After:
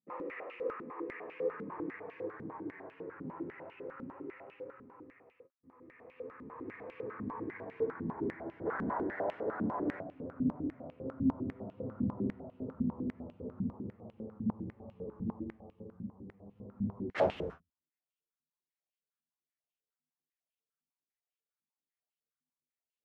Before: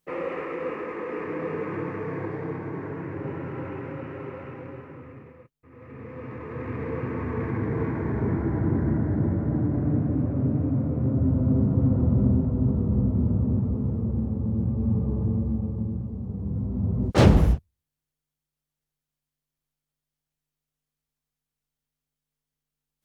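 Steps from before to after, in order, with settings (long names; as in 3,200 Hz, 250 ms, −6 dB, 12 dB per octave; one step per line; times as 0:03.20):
0:08.65–0:09.99: ceiling on every frequency bin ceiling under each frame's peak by 22 dB
flanger 0.42 Hz, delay 9.3 ms, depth 3.1 ms, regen +34%
band-pass on a step sequencer 10 Hz 230–2,800 Hz
level +3 dB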